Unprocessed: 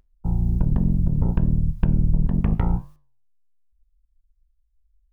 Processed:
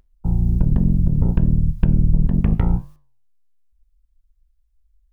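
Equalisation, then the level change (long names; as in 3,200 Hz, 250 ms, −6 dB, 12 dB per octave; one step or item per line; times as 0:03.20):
dynamic equaliser 970 Hz, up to −5 dB, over −47 dBFS, Q 1.1
+3.5 dB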